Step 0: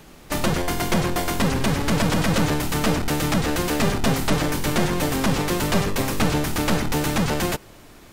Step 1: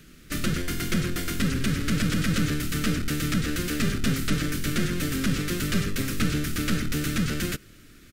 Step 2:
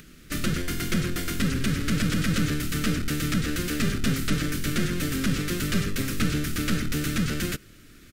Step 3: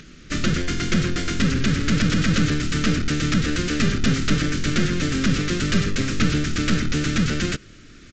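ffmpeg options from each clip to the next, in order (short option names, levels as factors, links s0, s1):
-af "firequalizer=gain_entry='entry(270,0);entry(900,-26);entry(1300,-1)':delay=0.05:min_phase=1,volume=0.708"
-af "acompressor=mode=upward:threshold=0.00501:ratio=2.5"
-af "volume=1.78" -ar 16000 -c:a sbc -b:a 64k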